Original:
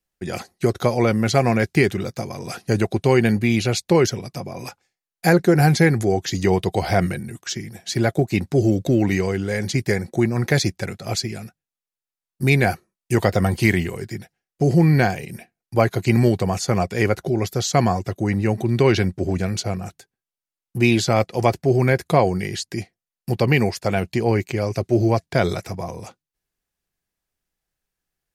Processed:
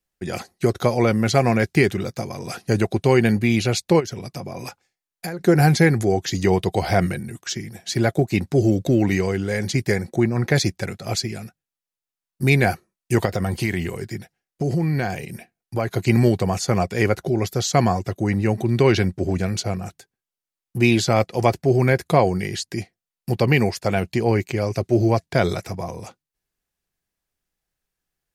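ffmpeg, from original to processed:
-filter_complex "[0:a]asplit=3[a][b][c];[a]afade=t=out:st=3.99:d=0.02[d];[b]acompressor=threshold=-25dB:ratio=16:attack=3.2:release=140:knee=1:detection=peak,afade=t=in:st=3.99:d=0.02,afade=t=out:st=5.4:d=0.02[e];[c]afade=t=in:st=5.4:d=0.02[f];[d][e][f]amix=inputs=3:normalize=0,asettb=1/sr,asplit=3[g][h][i];[g]atrim=end=10.164[j];[h]atrim=start=10.16:end=10.56,asetpts=PTS-STARTPTS,afade=t=in:d=0.004:c=qsin,afade=t=out:st=0.396:d=0.004:c=qsin,highshelf=f=5k:g=-7.5[k];[i]atrim=start=10.556[l];[j][k]acrossfade=d=0.004:c1=hsin:c2=qsin[m];[m][l]acrossfade=d=0.004:c1=qsin:c2=hsin,asettb=1/sr,asplit=3[n][o][p];[n]atrim=end=13.254[q];[o]atrim=start=13.25:end=15.95,asetpts=PTS-STARTPTS,afade=t=in:d=0.004:c=qsin,afade=t=out:st=2.696:d=0.004:c=qsin,acompressor=threshold=-20dB:ratio=2.5:attack=3.2:release=140:knee=1:detection=peak[r];[p]atrim=start=15.946[s];[q][r]acrossfade=d=0.004:c1=hsin:c2=qsin[t];[t][s]acrossfade=d=0.004:c1=qsin:c2=hsin"

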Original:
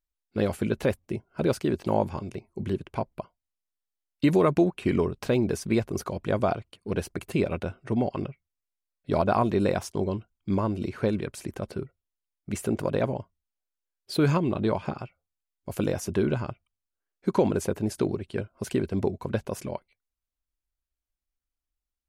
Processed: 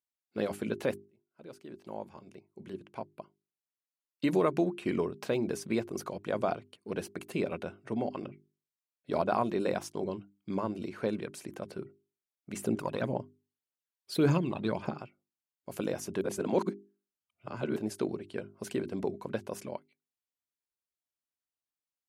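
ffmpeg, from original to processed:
-filter_complex "[0:a]asettb=1/sr,asplit=3[a][b][c];[a]atrim=end=12.624[d];[b]atrim=start=12.62:end=14.9,asetpts=PTS-STARTPTS,afade=t=in:d=0.004:c=qsin,afade=t=out:st=2.276:d=0.004:c=qsin,aphaser=in_gain=1:out_gain=1:delay=1.2:decay=0.56:speed=1.8:type=triangular[e];[c]atrim=start=14.896[f];[d][e]acrossfade=d=0.004:c1=hsin:c2=qsin[g];[g][f]acrossfade=d=0.004:c1=qsin:c2=hsin,asplit=4[h][i][j][k];[h]atrim=end=1.05,asetpts=PTS-STARTPTS,afade=t=out:st=1.046:d=0.004:c=hsin[l];[i]atrim=start=1.05:end=16.212,asetpts=PTS-STARTPTS,afade=t=in:d=3.23[m];[j]atrim=start=16.208:end=17.762,asetpts=PTS-STARTPTS,areverse[n];[k]atrim=start=17.758[o];[l][m]concat=n=2:v=0:a=1[p];[p][n]acrossfade=d=0.004:c1=hsin:c2=hsin[q];[q][o]acrossfade=d=0.004:c1=hsin:c2=hsin,highpass=170,bandreject=f=50:t=h:w=6,bandreject=f=100:t=h:w=6,bandreject=f=150:t=h:w=6,bandreject=f=200:t=h:w=6,bandreject=f=250:t=h:w=6,bandreject=f=300:t=h:w=6,bandreject=f=350:t=h:w=6,bandreject=f=400:t=h:w=6,volume=-5dB"

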